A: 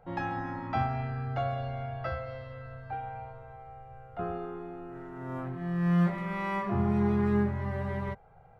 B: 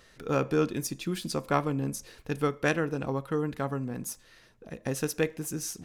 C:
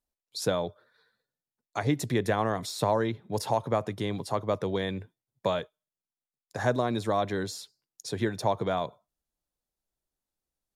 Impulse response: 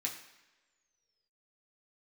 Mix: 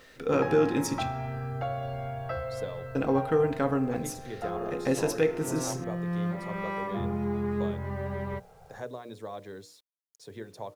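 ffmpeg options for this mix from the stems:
-filter_complex "[0:a]acompressor=threshold=0.0178:ratio=2,adelay=250,volume=1.26[s0];[1:a]equalizer=f=15000:w=0.33:g=-12,alimiter=limit=0.1:level=0:latency=1,volume=1.19,asplit=3[s1][s2][s3];[s1]atrim=end=1.03,asetpts=PTS-STARTPTS,afade=t=out:st=1.026:d=0.004:c=hsin[s4];[s2]atrim=start=1.03:end=2.95,asetpts=PTS-STARTPTS,volume=0[s5];[s3]atrim=start=2.95,asetpts=PTS-STARTPTS,afade=t=in:d=0.004:c=hsin[s6];[s4][s5][s6]concat=n=3:v=0:a=1,asplit=2[s7][s8];[s8]volume=0.631[s9];[2:a]adelay=2150,volume=0.188[s10];[3:a]atrim=start_sample=2205[s11];[s9][s11]afir=irnorm=-1:irlink=0[s12];[s0][s7][s10][s12]amix=inputs=4:normalize=0,bandreject=f=60:t=h:w=6,bandreject=f=120:t=h:w=6,bandreject=f=180:t=h:w=6,bandreject=f=240:t=h:w=6,bandreject=f=300:t=h:w=6,bandreject=f=360:t=h:w=6,bandreject=f=420:t=h:w=6,bandreject=f=480:t=h:w=6,bandreject=f=540:t=h:w=6,bandreject=f=600:t=h:w=6,acrusher=bits=10:mix=0:aa=0.000001,equalizer=f=470:w=2.5:g=6.5"

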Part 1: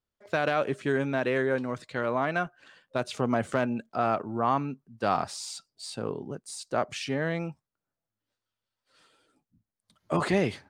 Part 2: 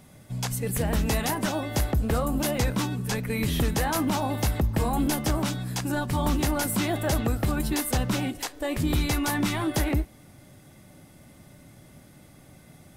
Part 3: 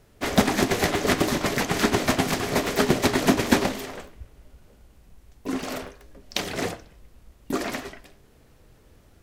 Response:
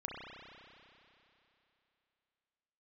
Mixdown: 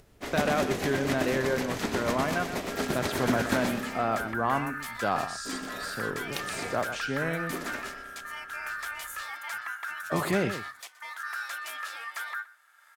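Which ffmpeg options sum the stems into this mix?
-filter_complex "[0:a]volume=0.794,asplit=2[s0][s1];[s1]volume=0.299[s2];[1:a]aeval=exprs='val(0)*sin(2*PI*1500*n/s)':c=same,highpass=800,adelay=2400,volume=0.376,asplit=2[s3][s4];[s4]volume=0.1[s5];[2:a]volume=0.224,asplit=3[s6][s7][s8];[s7]volume=0.596[s9];[s8]volume=0.631[s10];[3:a]atrim=start_sample=2205[s11];[s9][s11]afir=irnorm=-1:irlink=0[s12];[s2][s5][s10]amix=inputs=3:normalize=0,aecho=0:1:123:1[s13];[s0][s3][s6][s12][s13]amix=inputs=5:normalize=0,acompressor=mode=upward:threshold=0.00316:ratio=2.5"

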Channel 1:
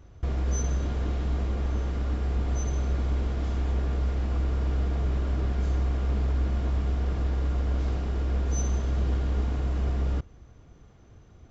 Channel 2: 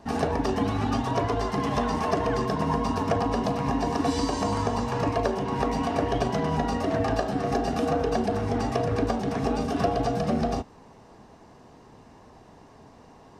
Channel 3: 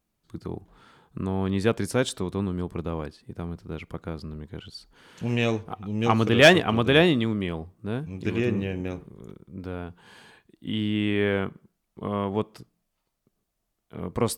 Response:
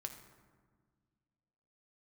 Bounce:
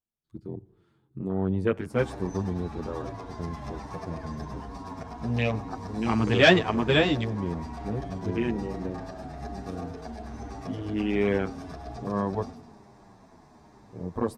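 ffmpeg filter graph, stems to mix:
-filter_complex "[0:a]adelay=1750,volume=0.15[s0];[1:a]equalizer=f=500:w=7:g=-9.5,bandreject=f=2900:w=5.3,acompressor=threshold=0.02:ratio=6,adelay=1900,volume=0.944,asplit=2[s1][s2];[s2]volume=0.355[s3];[2:a]afwtdn=0.02,volume=0.891,asplit=2[s4][s5];[s5]volume=0.266[s6];[3:a]atrim=start_sample=2205[s7];[s6][s7]afir=irnorm=-1:irlink=0[s8];[s3]aecho=0:1:104|208|312|416|520|624|728|832|936|1040:1|0.6|0.36|0.216|0.13|0.0778|0.0467|0.028|0.0168|0.0101[s9];[s0][s1][s4][s8][s9]amix=inputs=5:normalize=0,asplit=2[s10][s11];[s11]adelay=8.8,afreqshift=-1.2[s12];[s10][s12]amix=inputs=2:normalize=1"

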